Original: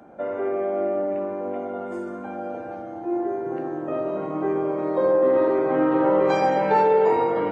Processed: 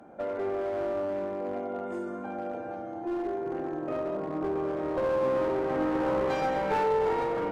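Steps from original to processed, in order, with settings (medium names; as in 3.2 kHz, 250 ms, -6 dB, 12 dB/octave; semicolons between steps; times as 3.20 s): 4.15–4.56 s: low-pass 1.4 kHz; in parallel at -2 dB: compression, threshold -27 dBFS, peak gain reduction 12 dB; on the sum: one-sided clip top -20.5 dBFS; trim -8 dB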